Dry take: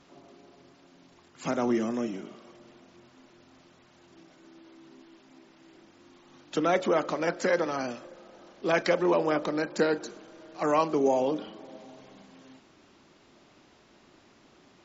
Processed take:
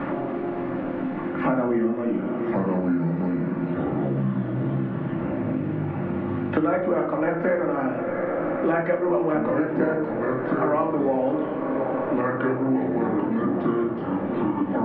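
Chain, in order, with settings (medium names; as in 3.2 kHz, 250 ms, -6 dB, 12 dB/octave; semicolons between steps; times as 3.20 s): ever faster or slower copies 576 ms, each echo -5 st, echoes 3, each echo -6 dB; low-pass 2 kHz 24 dB/octave; on a send: echo that smears into a reverb 712 ms, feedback 70%, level -15 dB; on the sum: simulated room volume 480 m³, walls furnished, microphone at 2.4 m; three bands compressed up and down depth 100%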